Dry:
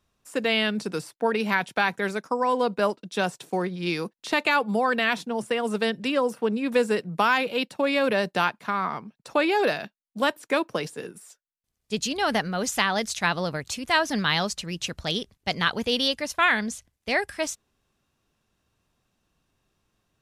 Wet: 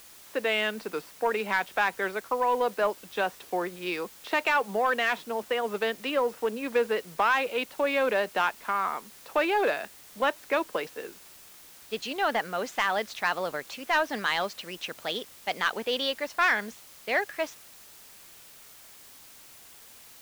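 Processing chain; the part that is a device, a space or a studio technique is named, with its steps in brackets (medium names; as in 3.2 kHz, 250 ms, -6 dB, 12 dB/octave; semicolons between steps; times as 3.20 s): tape answering machine (band-pass 400–2900 Hz; saturation -14.5 dBFS, distortion -18 dB; wow and flutter; white noise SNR 21 dB)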